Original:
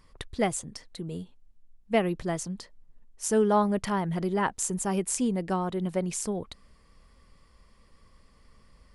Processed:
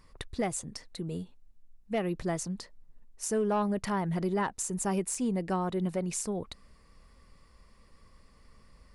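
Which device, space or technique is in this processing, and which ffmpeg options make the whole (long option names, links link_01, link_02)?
soft clipper into limiter: -af "bandreject=frequency=3200:width=13,asoftclip=type=tanh:threshold=-16dB,alimiter=limit=-22dB:level=0:latency=1:release=260"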